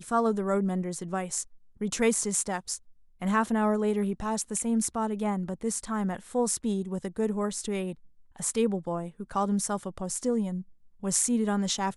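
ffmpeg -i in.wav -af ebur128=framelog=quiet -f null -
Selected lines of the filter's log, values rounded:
Integrated loudness:
  I:         -29.1 LUFS
  Threshold: -39.3 LUFS
Loudness range:
  LRA:         2.4 LU
  Threshold: -49.6 LUFS
  LRA low:   -30.8 LUFS
  LRA high:  -28.4 LUFS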